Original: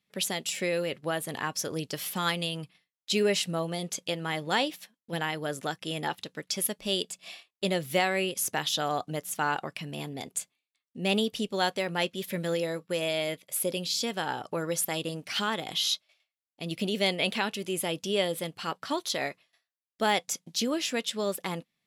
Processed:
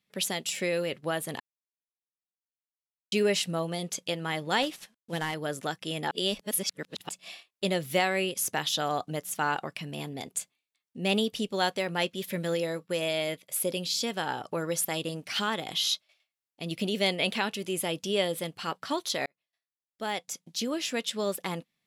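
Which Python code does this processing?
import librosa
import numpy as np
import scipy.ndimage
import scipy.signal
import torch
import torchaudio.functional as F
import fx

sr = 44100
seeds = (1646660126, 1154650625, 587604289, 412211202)

y = fx.cvsd(x, sr, bps=64000, at=(4.62, 5.34))
y = fx.edit(y, sr, fx.silence(start_s=1.4, length_s=1.72),
    fx.reverse_span(start_s=6.11, length_s=0.98),
    fx.fade_in_span(start_s=19.26, length_s=1.87), tone=tone)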